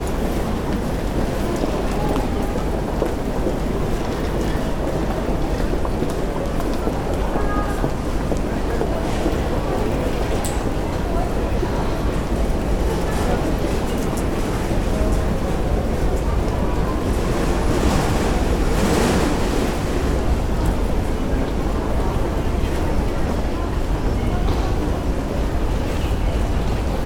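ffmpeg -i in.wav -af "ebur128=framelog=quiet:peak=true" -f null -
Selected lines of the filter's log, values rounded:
Integrated loudness:
  I:         -22.2 LUFS
  Threshold: -32.2 LUFS
Loudness range:
  LRA:         3.0 LU
  Threshold: -42.1 LUFS
  LRA low:   -23.0 LUFS
  LRA high:  -20.0 LUFS
True peak:
  Peak:       -4.9 dBFS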